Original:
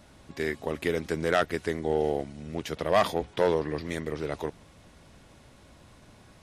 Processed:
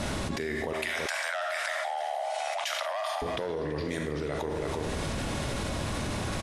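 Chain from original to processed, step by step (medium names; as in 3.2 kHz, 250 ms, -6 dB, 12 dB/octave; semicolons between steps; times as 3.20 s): steep low-pass 12 kHz 36 dB/octave; Schroeder reverb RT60 0.66 s, combs from 27 ms, DRR 6.5 dB; peak limiter -18 dBFS, peak gain reduction 7.5 dB; 0.73–3.22 s: steep high-pass 600 Hz 96 dB/octave; delay 332 ms -14.5 dB; level flattener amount 100%; trim -7.5 dB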